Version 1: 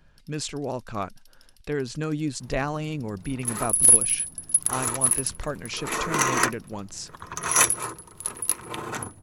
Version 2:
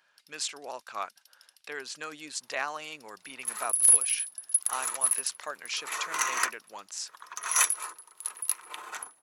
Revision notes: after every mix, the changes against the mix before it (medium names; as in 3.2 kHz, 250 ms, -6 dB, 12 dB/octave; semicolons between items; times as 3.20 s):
second sound -4.5 dB; master: add high-pass 950 Hz 12 dB/octave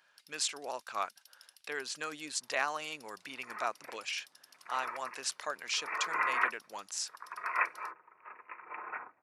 second sound: add steep low-pass 2.5 kHz 96 dB/octave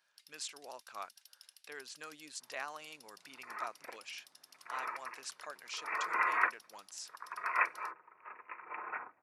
speech -9.5 dB